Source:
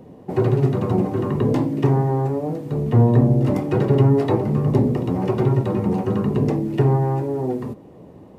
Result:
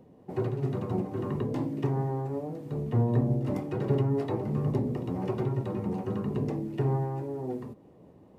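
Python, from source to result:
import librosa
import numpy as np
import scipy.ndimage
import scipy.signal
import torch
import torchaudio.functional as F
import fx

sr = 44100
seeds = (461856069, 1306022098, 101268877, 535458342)

y = fx.am_noise(x, sr, seeds[0], hz=5.7, depth_pct=50)
y = y * librosa.db_to_amplitude(-8.5)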